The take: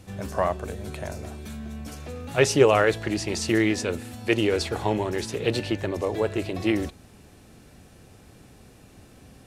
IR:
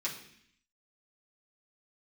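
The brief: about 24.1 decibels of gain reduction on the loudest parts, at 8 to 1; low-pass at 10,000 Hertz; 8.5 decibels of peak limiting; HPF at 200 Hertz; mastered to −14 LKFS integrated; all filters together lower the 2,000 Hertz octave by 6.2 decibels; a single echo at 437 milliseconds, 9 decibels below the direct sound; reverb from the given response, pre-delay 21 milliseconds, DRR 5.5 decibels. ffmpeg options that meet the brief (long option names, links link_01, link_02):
-filter_complex "[0:a]highpass=200,lowpass=10000,equalizer=frequency=2000:width_type=o:gain=-8,acompressor=threshold=-38dB:ratio=8,alimiter=level_in=9.5dB:limit=-24dB:level=0:latency=1,volume=-9.5dB,aecho=1:1:437:0.355,asplit=2[link_01][link_02];[1:a]atrim=start_sample=2205,adelay=21[link_03];[link_02][link_03]afir=irnorm=-1:irlink=0,volume=-9dB[link_04];[link_01][link_04]amix=inputs=2:normalize=0,volume=29.5dB"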